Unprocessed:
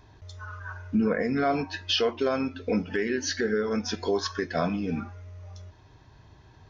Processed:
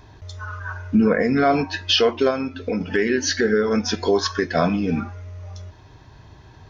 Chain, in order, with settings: 2.30–2.81 s: compression 2:1, threshold -33 dBFS, peak gain reduction 7 dB; trim +7.5 dB

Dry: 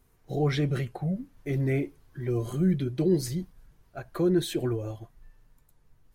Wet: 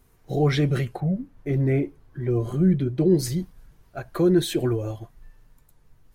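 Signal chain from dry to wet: 1.00–3.19 s: treble shelf 2.4 kHz -10.5 dB; trim +5 dB

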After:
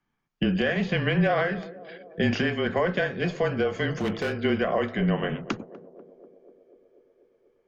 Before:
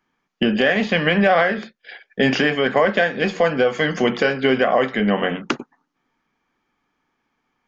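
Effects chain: frequency shift -26 Hz; bass shelf 150 Hz +11.5 dB; 3.94–4.40 s: hard clipper -14.5 dBFS, distortion -21 dB; band-passed feedback delay 245 ms, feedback 76%, band-pass 430 Hz, level -16.5 dB; trim -9 dB

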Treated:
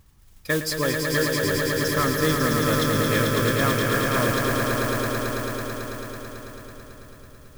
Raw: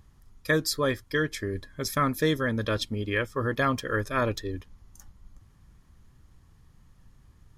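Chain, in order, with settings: modulation noise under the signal 12 dB; echo with a slow build-up 110 ms, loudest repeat 5, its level -5 dB

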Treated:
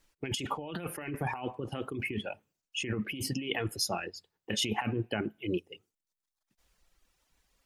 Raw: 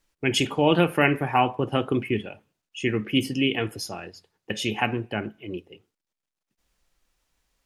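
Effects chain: reverb removal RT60 0.96 s; compressor with a negative ratio -31 dBFS, ratio -1; trim -3 dB

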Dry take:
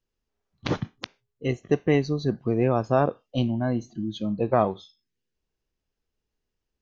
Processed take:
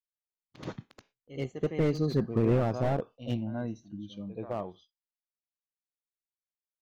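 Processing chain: Doppler pass-by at 2.40 s, 17 m/s, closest 7.4 m; gate with hold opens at -50 dBFS; pre-echo 79 ms -13 dB; slew-rate limiter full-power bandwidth 33 Hz

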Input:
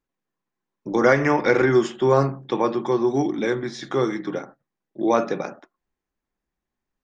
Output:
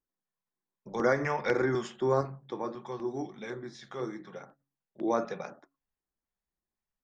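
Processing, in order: de-hum 139.5 Hz, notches 2; LFO notch square 2 Hz 310–2800 Hz; 2.21–4.41 s: flange 1.4 Hz, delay 5.1 ms, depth 5.9 ms, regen -68%; trim -9 dB

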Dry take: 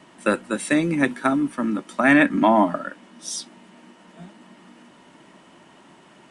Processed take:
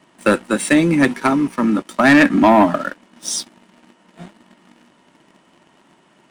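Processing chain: 1.13–1.67 s: rippled EQ curve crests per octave 0.82, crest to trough 7 dB; waveshaping leveller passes 2

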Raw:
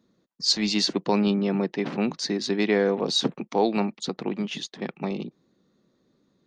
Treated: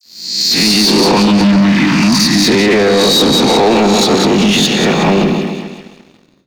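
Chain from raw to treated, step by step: reverse spectral sustain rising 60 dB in 0.87 s; phase dispersion lows, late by 55 ms, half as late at 2.4 kHz; 1.17–2.48 s: Chebyshev band-stop 320–910 Hz, order 4; on a send: two-band feedback delay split 1.6 kHz, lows 135 ms, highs 186 ms, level -7 dB; on the sum: peak limiter -18 dBFS, peak gain reduction 11.5 dB; level rider gain up to 16 dB; waveshaping leveller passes 2; trim -1.5 dB

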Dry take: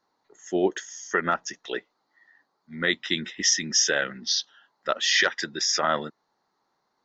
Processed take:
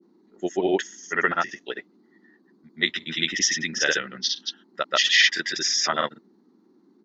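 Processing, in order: granulator, pitch spread up and down by 0 st; dynamic bell 2.6 kHz, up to +7 dB, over -41 dBFS, Q 0.77; band noise 190–380 Hz -59 dBFS

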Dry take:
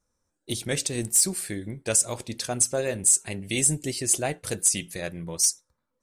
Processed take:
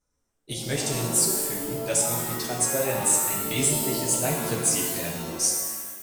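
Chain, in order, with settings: chorus voices 6, 0.88 Hz, delay 11 ms, depth 4.2 ms; pitch-shifted reverb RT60 1.2 s, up +7 st, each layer -2 dB, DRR 1 dB

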